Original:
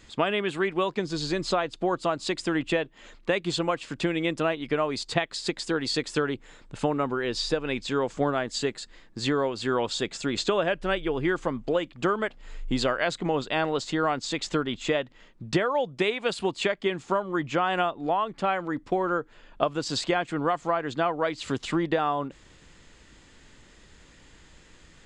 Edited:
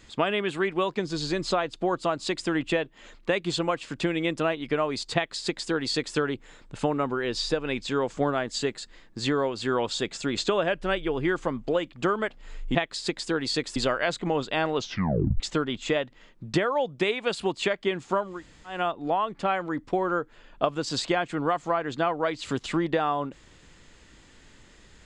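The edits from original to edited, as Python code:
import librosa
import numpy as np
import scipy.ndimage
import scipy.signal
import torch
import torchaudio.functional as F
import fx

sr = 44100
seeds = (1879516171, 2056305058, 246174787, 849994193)

y = fx.edit(x, sr, fx.duplicate(start_s=5.15, length_s=1.01, to_s=12.75),
    fx.tape_stop(start_s=13.74, length_s=0.65),
    fx.room_tone_fill(start_s=17.31, length_s=0.44, crossfade_s=0.24), tone=tone)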